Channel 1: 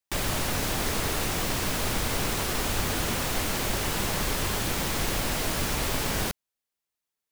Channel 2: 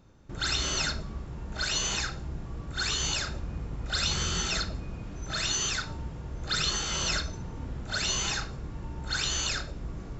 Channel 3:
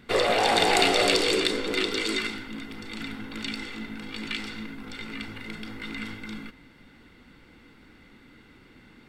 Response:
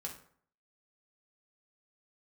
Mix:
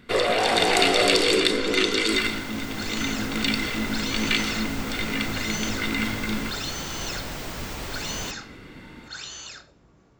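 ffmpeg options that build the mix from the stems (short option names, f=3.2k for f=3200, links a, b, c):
-filter_complex "[0:a]equalizer=f=11k:w=2.3:g=-14.5,adelay=2000,volume=-13.5dB[a];[1:a]highpass=f=250:p=1,volume=-12.5dB[b];[2:a]bandreject=f=840:w=12,volume=1dB[c];[a][b][c]amix=inputs=3:normalize=0,dynaudnorm=f=270:g=9:m=8dB"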